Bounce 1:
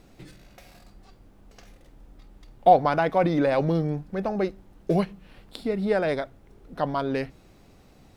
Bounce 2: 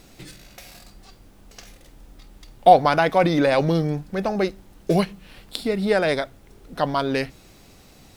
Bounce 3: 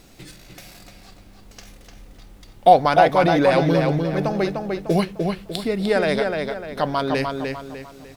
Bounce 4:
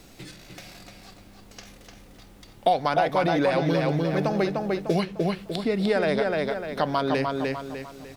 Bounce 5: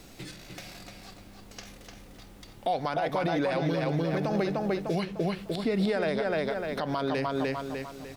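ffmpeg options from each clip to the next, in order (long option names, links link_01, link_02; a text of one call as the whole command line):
ffmpeg -i in.wav -af "highshelf=frequency=2400:gain=10.5,volume=3dB" out.wav
ffmpeg -i in.wav -filter_complex "[0:a]asplit=2[link_01][link_02];[link_02]adelay=300,lowpass=frequency=4400:poles=1,volume=-4dB,asplit=2[link_03][link_04];[link_04]adelay=300,lowpass=frequency=4400:poles=1,volume=0.39,asplit=2[link_05][link_06];[link_06]adelay=300,lowpass=frequency=4400:poles=1,volume=0.39,asplit=2[link_07][link_08];[link_08]adelay=300,lowpass=frequency=4400:poles=1,volume=0.39,asplit=2[link_09][link_10];[link_10]adelay=300,lowpass=frequency=4400:poles=1,volume=0.39[link_11];[link_01][link_03][link_05][link_07][link_09][link_11]amix=inputs=6:normalize=0" out.wav
ffmpeg -i in.wav -filter_complex "[0:a]acrossover=split=94|1600|6800[link_01][link_02][link_03][link_04];[link_01]acompressor=threshold=-53dB:ratio=4[link_05];[link_02]acompressor=threshold=-20dB:ratio=4[link_06];[link_03]acompressor=threshold=-33dB:ratio=4[link_07];[link_04]acompressor=threshold=-57dB:ratio=4[link_08];[link_05][link_06][link_07][link_08]amix=inputs=4:normalize=0" out.wav
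ffmpeg -i in.wav -af "alimiter=limit=-19dB:level=0:latency=1:release=81" out.wav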